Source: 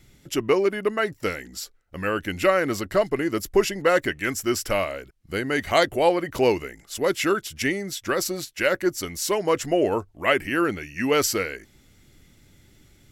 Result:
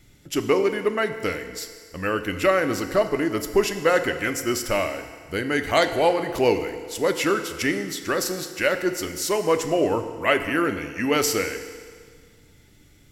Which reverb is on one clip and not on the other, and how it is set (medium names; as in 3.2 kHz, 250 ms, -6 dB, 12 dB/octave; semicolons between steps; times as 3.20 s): FDN reverb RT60 1.9 s, low-frequency decay 0.8×, high-frequency decay 0.9×, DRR 7.5 dB